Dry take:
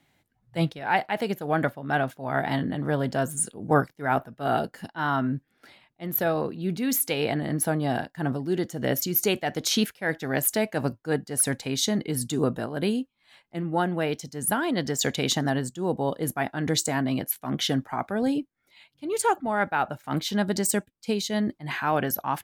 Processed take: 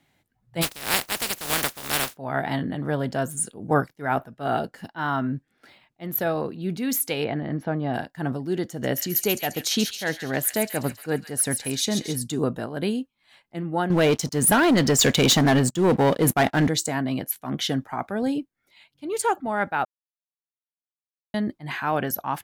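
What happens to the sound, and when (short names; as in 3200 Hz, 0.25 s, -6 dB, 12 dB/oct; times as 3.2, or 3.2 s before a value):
0.61–2.15 spectral contrast lowered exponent 0.19
4.33–6.04 decimation joined by straight lines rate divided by 2×
7.24–7.94 air absorption 310 m
8.69–12.16 thin delay 0.137 s, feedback 55%, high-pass 2300 Hz, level -6 dB
13.9–16.68 sample leveller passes 3
19.85–21.34 mute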